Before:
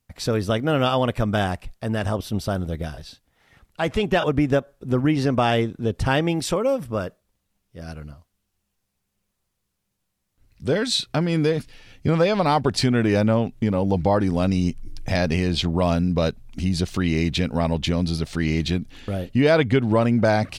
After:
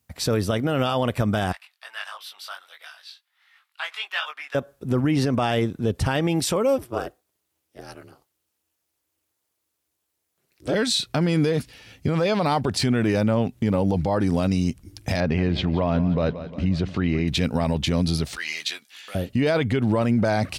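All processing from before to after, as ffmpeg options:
-filter_complex "[0:a]asettb=1/sr,asplit=3[a][b][c];[a]atrim=end=1.524[d];[b]atrim=start=1.52:end=4.55,asetpts=PTS-STARTPTS,afade=t=in:d=0.004:c=qsin,afade=t=out:st=3.026:d=0.004:c=qsin,highpass=f=1.1k:w=0.5412,highpass=f=1.1k:w=1.3066,highshelf=f=5.1k:t=q:w=1.5:g=-6.5,flanger=delay=19:depth=2.7:speed=1.5[e];[c]atrim=start=4.546[f];[d][e]acrossfade=d=0.004:c1=hsin:c2=qsin[g];[g][f]acrossfade=d=0.004:c1=qsin:c2=hsin,asettb=1/sr,asplit=3[h][i][j];[h]atrim=end=6.784[k];[i]atrim=start=6.78:end=10.74,asetpts=PTS-STARTPTS,afade=t=in:d=0.004:c=qsin,afade=t=out:st=3.956:d=0.004:c=qsin,highpass=f=210:w=0.5412,highpass=f=210:w=1.3066,aeval=exprs='val(0)*sin(2*PI*120*n/s)':c=same[l];[j]atrim=start=10.736[m];[k][l]acrossfade=d=0.004:c1=hsin:c2=qsin[n];[n][m]acrossfade=d=0.004:c1=qsin:c2=hsin,asettb=1/sr,asplit=3[o][p][q];[o]atrim=end=15.204[r];[p]atrim=start=15.2:end=17.28,asetpts=PTS-STARTPTS,afade=t=in:d=0.004:c=qsin,afade=t=out:st=2.076:d=0.004:c=qsin,lowpass=2.4k,aecho=1:1:177|354|531|708|885:0.158|0.0872|0.0479|0.0264|0.0145,atrim=end_sample=91728[s];[q]atrim=start=17.276[t];[r][s]acrossfade=d=0.004:c1=hsin:c2=qsin[u];[u][t]acrossfade=d=0.004:c1=qsin:c2=hsin,asettb=1/sr,asplit=3[v][w][x];[v]atrim=end=18.354[y];[w]atrim=start=18.35:end=19.15,asetpts=PTS-STARTPTS,afade=t=in:d=0.004:c=qsin,afade=t=out:st=0.796:d=0.004:c=qsin,highpass=1.4k,asplit=2[z][aa];[aa]adelay=14,volume=-5.5dB[ab];[z][ab]amix=inputs=2:normalize=0,atrim=end_sample=35280[ac];[x]atrim=start=19.146[ad];[y][ac]acrossfade=d=0.004:c1=hsin:c2=qsin[ae];[ae][ad]acrossfade=d=0.004:c1=qsin:c2=hsin,highpass=f=50:w=0.5412,highpass=f=50:w=1.3066,highshelf=f=10k:g=7.5,alimiter=limit=-15dB:level=0:latency=1:release=43,volume=2dB"

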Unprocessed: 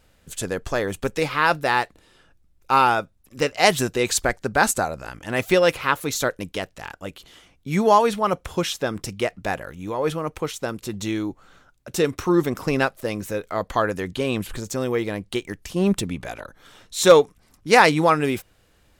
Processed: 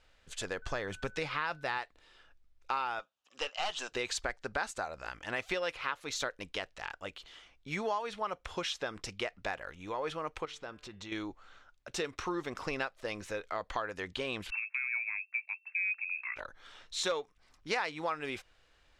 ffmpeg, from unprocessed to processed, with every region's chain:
-filter_complex "[0:a]asettb=1/sr,asplit=3[a][b][c];[a]atrim=end=0.624[d];[b]atrim=start=0.62:end=1.78,asetpts=PTS-STARTPTS,afade=t=in:d=0.004:c=qsin,afade=t=out:st=1.156:d=0.004:c=qsin,equalizer=f=140:t=o:w=1.4:g=9,aeval=exprs='val(0)+0.00447*sin(2*PI*1500*n/s)':c=same[e];[c]atrim=start=1.776[f];[d][e]acrossfade=d=0.004:c1=hsin:c2=qsin[g];[g][f]acrossfade=d=0.004:c1=qsin:c2=hsin,asettb=1/sr,asplit=3[h][i][j];[h]atrim=end=2.994[k];[i]atrim=start=2.99:end=3.92,asetpts=PTS-STARTPTS,afade=t=in:d=0.004:c=qsin,afade=t=out:st=0.926:d=0.004:c=qsin,highpass=370,equalizer=f=370:t=q:w=4:g=-6,equalizer=f=820:t=q:w=4:g=4,equalizer=f=1.2k:t=q:w=4:g=4,equalizer=f=2.1k:t=q:w=4:g=-6,equalizer=f=3k:t=q:w=4:g=9,equalizer=f=6.7k:t=q:w=4:g=5,lowpass=f=8.8k:w=0.5412,lowpass=f=8.8k:w=1.3066,aeval=exprs='(tanh(6.31*val(0)+0.4)-tanh(0.4))/6.31':c=same[l];[j]atrim=start=3.916[m];[k][l]acrossfade=d=0.004:c1=hsin:c2=qsin[n];[n][m]acrossfade=d=0.004:c1=qsin:c2=hsin,asettb=1/sr,asplit=3[o][p][q];[o]atrim=end=10.454[r];[p]atrim=start=10.45:end=11.12,asetpts=PTS-STARTPTS,afade=t=in:d=0.004:c=qsin,afade=t=out:st=0.666:d=0.004:c=qsin,lowpass=f=3.8k:p=1,acompressor=threshold=-36dB:ratio=2:attack=3.2:release=140:knee=1:detection=peak,bandreject=f=148.6:t=h:w=4,bandreject=f=297.2:t=h:w=4,bandreject=f=445.8:t=h:w=4,bandreject=f=594.4:t=h:w=4,bandreject=f=743:t=h:w=4,bandreject=f=891.6:t=h:w=4,bandreject=f=1.0402k:t=h:w=4,bandreject=f=1.1888k:t=h:w=4,bandreject=f=1.3374k:t=h:w=4,bandreject=f=1.486k:t=h:w=4,bandreject=f=1.6346k:t=h:w=4,bandreject=f=1.7832k:t=h:w=4,bandreject=f=1.9318k:t=h:w=4,bandreject=f=2.0804k:t=h:w=4,bandreject=f=2.229k:t=h:w=4,bandreject=f=2.3776k:t=h:w=4,bandreject=f=2.5262k:t=h:w=4,bandreject=f=2.6748k:t=h:w=4,bandreject=f=2.8234k:t=h:w=4,bandreject=f=2.972k:t=h:w=4,bandreject=f=3.1206k:t=h:w=4,bandreject=f=3.2692k:t=h:w=4,bandreject=f=3.4178k:t=h:w=4,bandreject=f=3.5664k:t=h:w=4[s];[q]atrim=start=11.116[t];[r][s]acrossfade=d=0.004:c1=hsin:c2=qsin[u];[u][t]acrossfade=d=0.004:c1=qsin:c2=hsin,asettb=1/sr,asplit=3[v][w][x];[v]atrim=end=14.504[y];[w]atrim=start=14.5:end=16.36,asetpts=PTS-STARTPTS,afade=t=in:d=0.004:c=qsin,afade=t=out:st=1.856:d=0.004:c=qsin,lowpass=f=2.3k:t=q:w=0.5098,lowpass=f=2.3k:t=q:w=0.6013,lowpass=f=2.3k:t=q:w=0.9,lowpass=f=2.3k:t=q:w=2.563,afreqshift=-2700,agate=range=-12dB:threshold=-41dB:ratio=16:release=100:detection=peak,highpass=1.5k[z];[x]atrim=start=16.356[aa];[y][z]acrossfade=d=0.004:c1=hsin:c2=qsin[ab];[ab][aa]acrossfade=d=0.004:c1=qsin:c2=hsin,lowpass=4.9k,equalizer=f=160:w=0.38:g=-14,acompressor=threshold=-30dB:ratio=4,volume=-2.5dB"

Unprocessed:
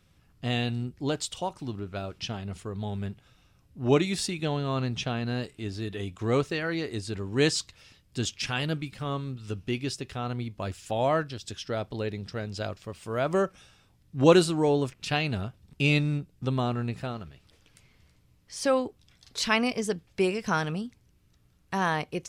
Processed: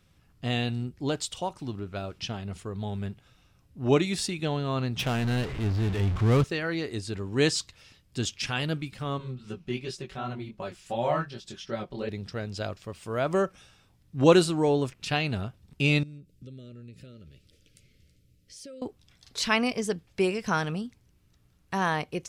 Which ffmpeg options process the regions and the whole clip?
-filter_complex "[0:a]asettb=1/sr,asplit=3[a][b][c];[a]atrim=end=4.994[d];[b]atrim=start=4.99:end=6.44,asetpts=PTS-STARTPTS,afade=t=in:d=0.004:c=qsin,afade=t=out:st=1.446:d=0.004:c=qsin,aeval=exprs='val(0)+0.5*0.0316*sgn(val(0))':c=same,asubboost=boost=6:cutoff=190,adynamicsmooth=sensitivity=6.5:basefreq=1.1k[e];[c]atrim=start=6.436[f];[d][e]acrossfade=d=0.004:c1=hsin:c2=qsin[g];[g][f]acrossfade=d=0.004:c1=qsin:c2=hsin,asettb=1/sr,asplit=3[h][i][j];[h]atrim=end=9.184[k];[i]atrim=start=9.18:end=12.09,asetpts=PTS-STARTPTS,afade=t=in:d=0.004:c=qsin,afade=t=out:st=2.906:d=0.004:c=qsin,highshelf=f=5.1k:g=-7,aecho=1:1:5.3:0.71,atrim=end_sample=128331,flanger=delay=17:depth=6.8:speed=2.7[l];[j]atrim=start=12.086[m];[k][l]acrossfade=d=0.004:c1=hsin:c2=qsin[n];[n][m]acrossfade=d=0.004:c1=qsin:c2=hsin,asettb=1/sr,asplit=3[o][p][q];[o]atrim=end=16.034[r];[p]atrim=start=16.03:end=18.82,asetpts=PTS-STARTPTS,afade=t=in:d=0.004:c=qsin,afade=t=out:st=2.786:d=0.004:c=qsin,acompressor=threshold=-46dB:ratio=3:attack=3.2:release=140:knee=1:detection=peak,asuperstop=centerf=880:order=12:qfactor=1.3,equalizer=f=1.5k:t=o:w=0.97:g=-10.5[s];[q]atrim=start=18.816[t];[r][s]acrossfade=d=0.004:c1=hsin:c2=qsin[u];[u][t]acrossfade=d=0.004:c1=qsin:c2=hsin"

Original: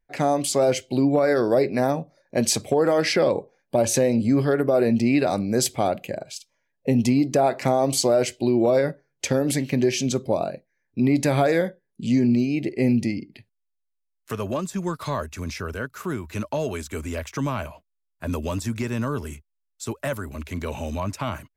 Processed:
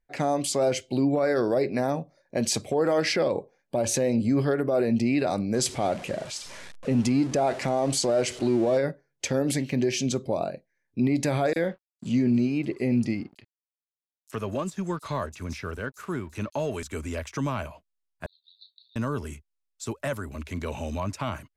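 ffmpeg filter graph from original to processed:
-filter_complex "[0:a]asettb=1/sr,asplit=3[a][b][c];[a]atrim=end=5.544[d];[b]atrim=start=5.54:end=8.78,asetpts=PTS-STARTPTS,afade=t=in:d=0.004:c=qsin,afade=t=out:st=3.236:d=0.004:c=qsin,aeval=exprs='val(0)+0.5*0.0224*sgn(val(0))':c=same,lowpass=f=11k:w=0.5412,lowpass=f=11k:w=1.3066[e];[c]atrim=start=8.776[f];[d][e]acrossfade=d=0.004:c1=hsin:c2=qsin[g];[g][f]acrossfade=d=0.004:c1=qsin:c2=hsin,asettb=1/sr,asplit=3[h][i][j];[h]atrim=end=11.534[k];[i]atrim=start=11.53:end=16.83,asetpts=PTS-STARTPTS,afade=t=in:d=0.004:c=qsin,afade=t=out:st=5.296:d=0.004:c=qsin,aeval=exprs='sgn(val(0))*max(abs(val(0))-0.00266,0)':c=same,acrossover=split=5300[l][m];[l]adelay=30[n];[n][m]amix=inputs=2:normalize=0,atrim=end_sample=233730[o];[j]atrim=start=16.826[p];[k][o]acrossfade=d=0.004:c1=hsin:c2=qsin[q];[q][p]acrossfade=d=0.004:c1=qsin:c2=hsin,asettb=1/sr,asplit=3[r][s][t];[r]atrim=end=18.264[u];[s]atrim=start=18.26:end=18.96,asetpts=PTS-STARTPTS,afade=t=in:d=0.004:c=qsin,afade=t=out:st=0.696:d=0.004:c=qsin,asuperpass=centerf=4000:order=8:qfactor=5.4,asplit=2[v][w];[w]adelay=33,volume=-10.5dB[x];[v][x]amix=inputs=2:normalize=0,atrim=end_sample=30870[y];[t]atrim=start=18.956[z];[u][y]acrossfade=d=0.004:c1=hsin:c2=qsin[aa];[aa][z]acrossfade=d=0.004:c1=qsin:c2=hsin,lowpass=11k,alimiter=limit=-12.5dB:level=0:latency=1:release=46,volume=-2.5dB"

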